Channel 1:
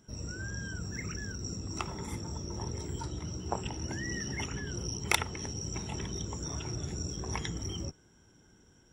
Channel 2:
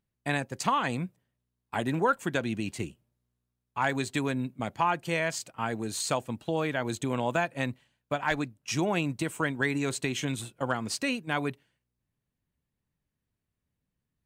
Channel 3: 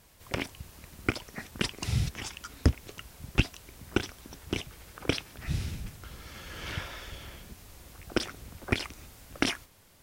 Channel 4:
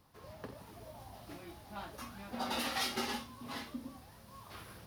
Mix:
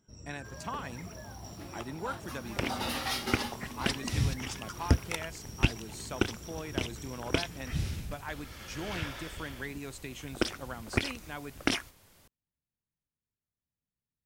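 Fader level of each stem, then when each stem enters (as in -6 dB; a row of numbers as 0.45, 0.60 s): -9.5, -12.0, -1.0, +2.0 dB; 0.00, 0.00, 2.25, 0.30 s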